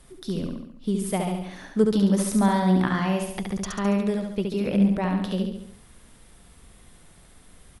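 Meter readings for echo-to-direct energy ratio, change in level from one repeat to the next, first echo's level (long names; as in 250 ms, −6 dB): −2.5 dB, −5.5 dB, −4.0 dB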